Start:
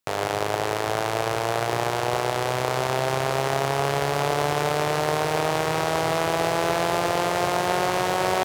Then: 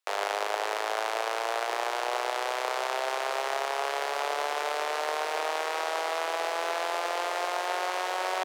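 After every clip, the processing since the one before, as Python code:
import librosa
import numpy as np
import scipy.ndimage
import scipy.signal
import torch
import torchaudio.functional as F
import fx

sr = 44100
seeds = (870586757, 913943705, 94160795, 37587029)

y = scipy.signal.sosfilt(scipy.signal.bessel(8, 660.0, 'highpass', norm='mag', fs=sr, output='sos'), x)
y = fx.rider(y, sr, range_db=10, speed_s=0.5)
y = fx.high_shelf(y, sr, hz=7800.0, db=-8.0)
y = y * 10.0 ** (-3.0 / 20.0)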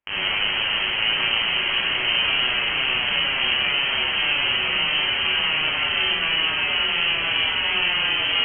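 y = x + 10.0 ** (-6.5 / 20.0) * np.pad(x, (int(1022 * sr / 1000.0), 0))[:len(x)]
y = fx.rev_schroeder(y, sr, rt60_s=1.0, comb_ms=31, drr_db=-7.0)
y = fx.freq_invert(y, sr, carrier_hz=3600)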